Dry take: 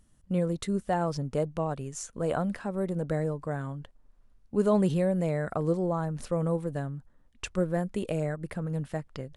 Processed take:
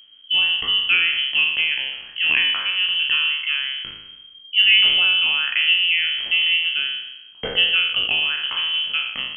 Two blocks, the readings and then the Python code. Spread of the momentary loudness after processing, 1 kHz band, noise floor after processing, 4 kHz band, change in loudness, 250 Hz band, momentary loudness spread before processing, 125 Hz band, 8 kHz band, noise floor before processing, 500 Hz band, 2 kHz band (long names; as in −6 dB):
10 LU, −1.5 dB, −45 dBFS, +36.0 dB, +13.0 dB, below −15 dB, 10 LU, below −20 dB, below −35 dB, −62 dBFS, −12.5 dB, +26.0 dB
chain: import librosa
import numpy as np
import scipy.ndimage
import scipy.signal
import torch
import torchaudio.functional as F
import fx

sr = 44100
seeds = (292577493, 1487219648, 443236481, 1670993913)

y = fx.spec_trails(x, sr, decay_s=0.92)
y = fx.freq_invert(y, sr, carrier_hz=3200)
y = fx.echo_bbd(y, sr, ms=242, stages=2048, feedback_pct=52, wet_db=-21.5)
y = y * librosa.db_to_amplitude(8.0)